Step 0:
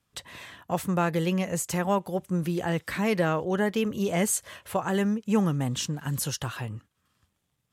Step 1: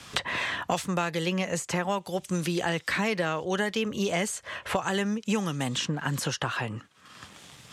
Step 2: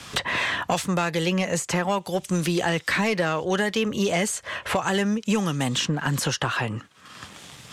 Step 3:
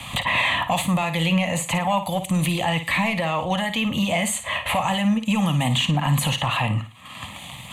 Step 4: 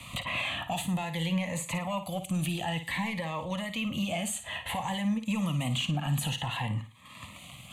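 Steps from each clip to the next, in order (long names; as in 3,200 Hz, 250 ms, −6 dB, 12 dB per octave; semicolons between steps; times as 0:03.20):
low-pass filter 6,200 Hz 12 dB per octave; spectral tilt +2 dB per octave; multiband upward and downward compressor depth 100%
soft clipping −18 dBFS, distortion −19 dB; level +5.5 dB
brickwall limiter −19.5 dBFS, peak gain reduction 7 dB; phaser with its sweep stopped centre 1,500 Hz, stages 6; flutter between parallel walls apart 9.4 metres, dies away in 0.32 s; level +9 dB
phaser whose notches keep moving one way rising 0.55 Hz; level −8.5 dB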